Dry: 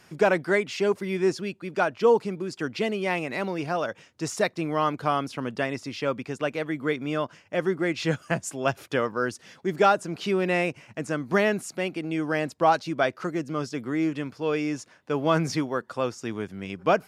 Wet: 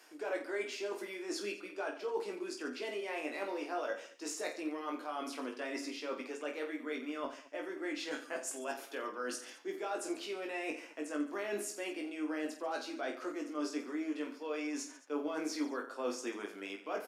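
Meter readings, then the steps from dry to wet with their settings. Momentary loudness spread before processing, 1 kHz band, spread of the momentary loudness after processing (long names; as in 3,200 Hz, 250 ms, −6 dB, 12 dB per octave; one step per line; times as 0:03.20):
9 LU, −15.5 dB, 4 LU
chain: elliptic high-pass filter 270 Hz, stop band 50 dB
high-shelf EQ 8,200 Hz +6 dB
brickwall limiter −17.5 dBFS, peak gain reduction 9.5 dB
reversed playback
downward compressor 5 to 1, threshold −35 dBFS, peak gain reduction 12.5 dB
reversed playback
flanger 0.13 Hz, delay 6.4 ms, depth 8.1 ms, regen +50%
on a send: reverse bouncing-ball delay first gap 20 ms, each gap 1.4×, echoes 5
on the sum: level +1 dB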